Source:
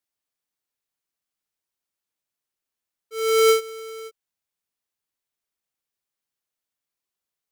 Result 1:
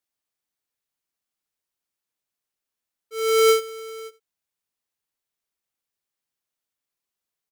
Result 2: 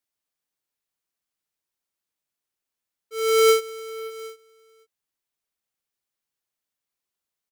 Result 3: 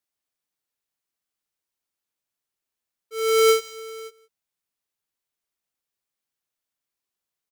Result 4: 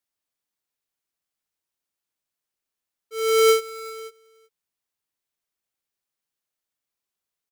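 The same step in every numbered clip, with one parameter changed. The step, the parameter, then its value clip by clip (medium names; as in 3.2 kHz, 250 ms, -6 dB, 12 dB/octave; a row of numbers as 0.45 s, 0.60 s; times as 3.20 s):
delay, time: 86 ms, 755 ms, 172 ms, 379 ms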